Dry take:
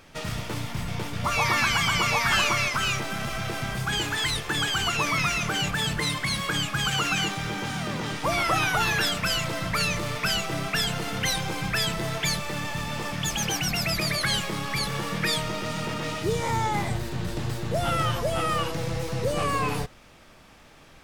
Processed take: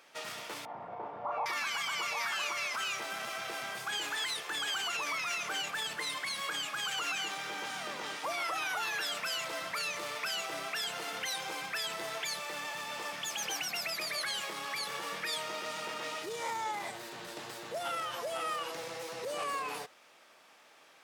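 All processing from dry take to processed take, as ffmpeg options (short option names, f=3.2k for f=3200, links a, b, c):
-filter_complex "[0:a]asettb=1/sr,asplit=3[a][b][c];[a]atrim=end=0.654[d];[b]atrim=start=0.65:end=1.46,asetpts=PTS-STARTPTS,afade=t=in:d=0.004:c=qsin,afade=t=out:st=0.806:d=0.004:c=qsin,lowpass=f=820:t=q:w=2.3,asplit=2[e][f];[f]adelay=36,volume=-3dB[g];[e][g]amix=inputs=2:normalize=0,atrim=end_sample=35721[h];[c]atrim=start=1.456[i];[d][h]acrossfade=d=0.004:c1=hsin:c2=qsin[j];[j][i]acrossfade=d=0.004:c1=qsin:c2=hsin,alimiter=limit=-20dB:level=0:latency=1:release=45,highpass=500,volume=-5.5dB"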